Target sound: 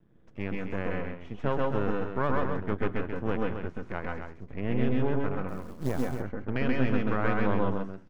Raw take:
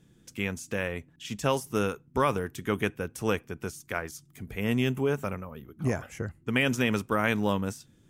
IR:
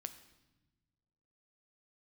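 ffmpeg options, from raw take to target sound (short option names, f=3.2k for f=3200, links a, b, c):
-filter_complex "[0:a]aeval=exprs='max(val(0),0)':c=same,lowpass=1.5k,aecho=1:1:134:0.531,aeval=exprs='max(val(0),0)':c=same,asettb=1/sr,asplit=3[a][b][c];[a]atrim=end=5.484[d];[b]atrim=start=5.48:end=6.09,asetpts=PTS-STARTPTS,afade=t=in:d=0.004:c=qsin,afade=t=out:st=0.606:d=0.004:c=qsin,acrusher=bits=5:mode=log:mix=0:aa=0.000001[e];[c]atrim=start=6.086[f];[d][e]acrossfade=d=0.004:c1=hsin:c2=qsin[g];[g][f]acrossfade=d=0.004:c1=qsin:c2=hsin,asplit=2[h][i];[1:a]atrim=start_sample=2205,afade=t=out:st=0.14:d=0.01,atrim=end_sample=6615,adelay=130[j];[i][j]afir=irnorm=-1:irlink=0,volume=2dB[k];[h][k]amix=inputs=2:normalize=0"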